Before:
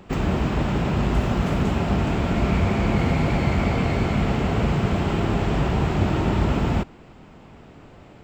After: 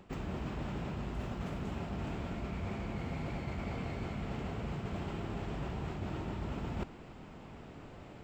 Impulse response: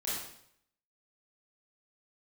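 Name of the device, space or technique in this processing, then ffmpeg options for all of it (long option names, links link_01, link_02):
compression on the reversed sound: -af "areverse,acompressor=threshold=-31dB:ratio=12,areverse,volume=-4dB"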